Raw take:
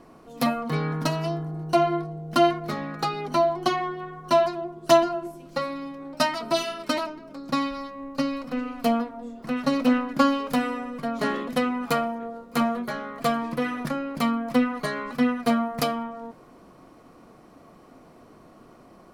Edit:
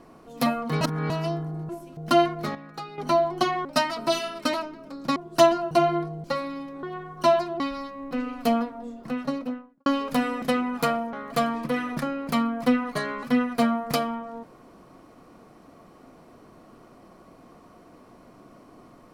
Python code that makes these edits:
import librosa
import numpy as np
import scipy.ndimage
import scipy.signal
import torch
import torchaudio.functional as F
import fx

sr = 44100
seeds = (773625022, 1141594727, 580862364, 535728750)

y = fx.studio_fade_out(x, sr, start_s=9.24, length_s=1.01)
y = fx.edit(y, sr, fx.reverse_span(start_s=0.81, length_s=0.29),
    fx.swap(start_s=1.69, length_s=0.53, other_s=5.22, other_length_s=0.28),
    fx.clip_gain(start_s=2.8, length_s=0.43, db=-10.0),
    fx.swap(start_s=3.9, length_s=0.77, other_s=6.09, other_length_s=1.51),
    fx.cut(start_s=8.11, length_s=0.39),
    fx.cut(start_s=10.81, length_s=0.69),
    fx.cut(start_s=12.21, length_s=0.8), tone=tone)